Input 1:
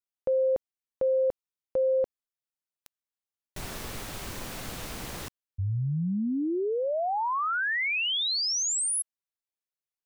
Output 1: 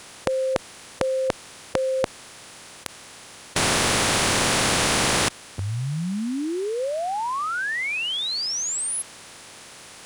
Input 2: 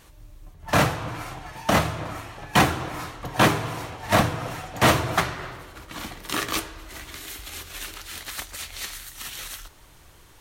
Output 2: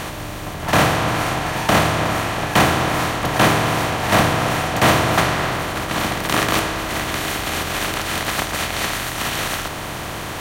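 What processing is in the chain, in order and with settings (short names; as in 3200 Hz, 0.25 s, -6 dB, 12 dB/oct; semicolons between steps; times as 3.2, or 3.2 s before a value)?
per-bin compression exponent 0.4; one-sided clip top -6 dBFS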